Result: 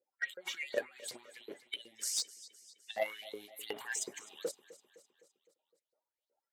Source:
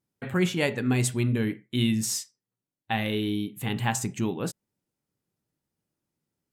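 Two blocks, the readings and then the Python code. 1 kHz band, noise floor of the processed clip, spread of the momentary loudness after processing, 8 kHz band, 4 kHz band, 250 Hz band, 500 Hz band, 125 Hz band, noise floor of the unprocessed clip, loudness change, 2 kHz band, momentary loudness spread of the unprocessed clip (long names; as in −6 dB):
−14.5 dB, below −85 dBFS, 17 LU, −6.5 dB, −7.5 dB, −29.5 dB, −9.0 dB, below −40 dB, below −85 dBFS, −12.0 dB, −8.0 dB, 7 LU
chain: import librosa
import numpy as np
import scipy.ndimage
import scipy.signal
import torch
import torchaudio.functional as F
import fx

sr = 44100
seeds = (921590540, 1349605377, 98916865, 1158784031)

p1 = fx.spec_quant(x, sr, step_db=30)
p2 = fx.notch(p1, sr, hz=2600.0, q=9.3)
p3 = fx.over_compress(p2, sr, threshold_db=-31.0, ratio=-0.5)
p4 = fx.filter_lfo_highpass(p3, sr, shape='saw_up', hz=2.7, low_hz=460.0, high_hz=4600.0, q=7.2)
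p5 = p4 + fx.echo_feedback(p4, sr, ms=256, feedback_pct=56, wet_db=-17.0, dry=0)
p6 = fx.cheby_harmonics(p5, sr, harmonics=(3,), levels_db=(-11,), full_scale_db=-5.0)
y = p6 * librosa.db_to_amplitude(6.5)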